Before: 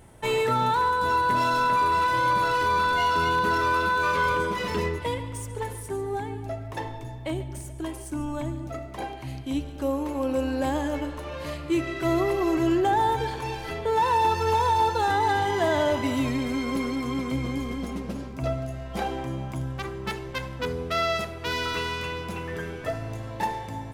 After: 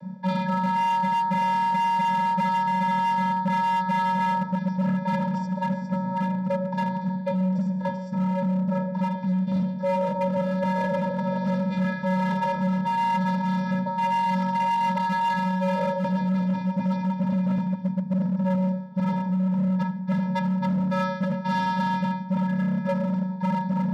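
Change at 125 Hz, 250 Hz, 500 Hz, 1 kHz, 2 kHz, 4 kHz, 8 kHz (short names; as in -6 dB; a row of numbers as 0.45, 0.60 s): +6.5 dB, +6.0 dB, -3.0 dB, +0.5 dB, -5.0 dB, -7.0 dB, n/a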